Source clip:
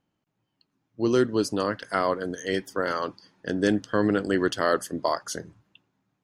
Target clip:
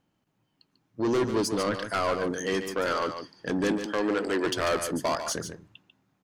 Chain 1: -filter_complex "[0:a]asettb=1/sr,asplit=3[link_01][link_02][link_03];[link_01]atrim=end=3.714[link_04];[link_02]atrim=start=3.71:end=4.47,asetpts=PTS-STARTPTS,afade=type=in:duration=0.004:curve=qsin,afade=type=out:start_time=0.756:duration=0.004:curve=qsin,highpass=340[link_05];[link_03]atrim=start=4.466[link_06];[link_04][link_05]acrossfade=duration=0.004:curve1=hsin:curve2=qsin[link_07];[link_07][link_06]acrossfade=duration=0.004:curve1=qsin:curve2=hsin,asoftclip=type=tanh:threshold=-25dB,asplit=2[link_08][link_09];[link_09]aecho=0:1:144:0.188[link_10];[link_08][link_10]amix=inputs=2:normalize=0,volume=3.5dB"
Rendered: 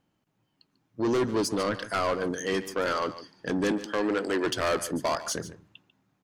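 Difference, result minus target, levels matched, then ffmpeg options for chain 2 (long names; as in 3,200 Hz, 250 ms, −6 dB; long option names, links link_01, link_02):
echo-to-direct −6 dB
-filter_complex "[0:a]asettb=1/sr,asplit=3[link_01][link_02][link_03];[link_01]atrim=end=3.714[link_04];[link_02]atrim=start=3.71:end=4.47,asetpts=PTS-STARTPTS,afade=type=in:duration=0.004:curve=qsin,afade=type=out:start_time=0.756:duration=0.004:curve=qsin,highpass=340[link_05];[link_03]atrim=start=4.466[link_06];[link_04][link_05]acrossfade=duration=0.004:curve1=hsin:curve2=qsin[link_07];[link_07][link_06]acrossfade=duration=0.004:curve1=qsin:curve2=hsin,asoftclip=type=tanh:threshold=-25dB,asplit=2[link_08][link_09];[link_09]aecho=0:1:144:0.376[link_10];[link_08][link_10]amix=inputs=2:normalize=0,volume=3.5dB"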